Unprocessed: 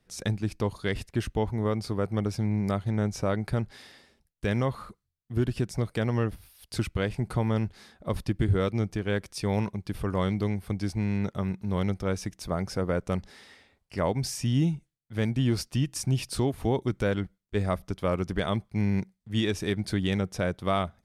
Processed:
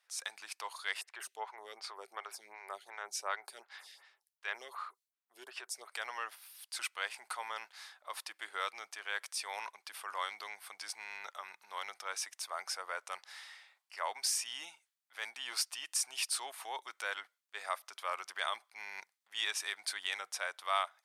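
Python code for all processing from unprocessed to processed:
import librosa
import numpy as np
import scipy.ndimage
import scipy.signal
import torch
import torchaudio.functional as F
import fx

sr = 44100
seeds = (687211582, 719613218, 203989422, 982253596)

y = fx.chain(x, sr, fx.peak_eq(hz=390.0, db=10.5, octaves=0.3),
    fx.stagger_phaser(hz=2.7), at=(1.01, 5.92))
y = fx.transient(y, sr, attack_db=-4, sustain_db=2)
y = scipy.signal.sosfilt(scipy.signal.butter(4, 880.0, 'highpass', fs=sr, output='sos'), y)
y = fx.dynamic_eq(y, sr, hz=8800.0, q=3.2, threshold_db=-60.0, ratio=4.0, max_db=4)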